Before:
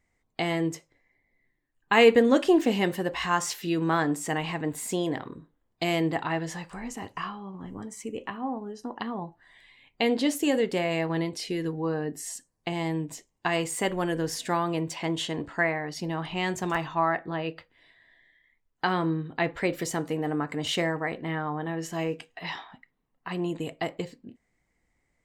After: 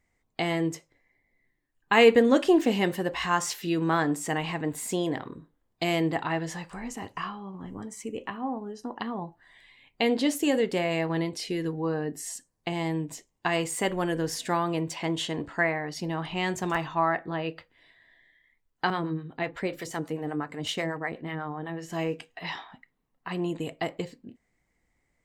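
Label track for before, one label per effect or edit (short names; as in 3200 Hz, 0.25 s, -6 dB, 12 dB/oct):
18.900000	21.900000	harmonic tremolo 8.1 Hz, crossover 530 Hz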